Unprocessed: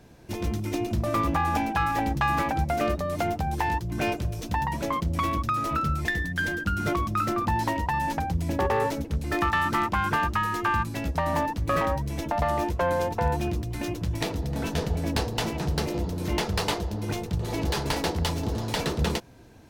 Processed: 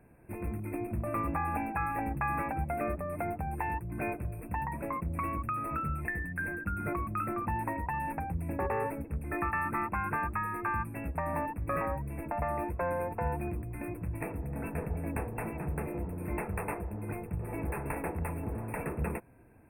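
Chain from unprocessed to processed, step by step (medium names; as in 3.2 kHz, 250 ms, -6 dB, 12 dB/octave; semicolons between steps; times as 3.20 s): brick-wall FIR band-stop 2.7–8.3 kHz; trim -7.5 dB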